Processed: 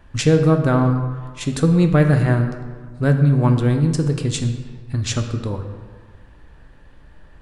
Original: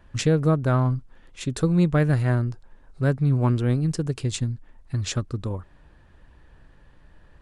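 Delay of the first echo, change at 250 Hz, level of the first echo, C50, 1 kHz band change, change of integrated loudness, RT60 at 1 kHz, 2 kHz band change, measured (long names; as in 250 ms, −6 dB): no echo audible, +6.0 dB, no echo audible, 7.5 dB, +5.5 dB, +5.5 dB, 1.6 s, +6.0 dB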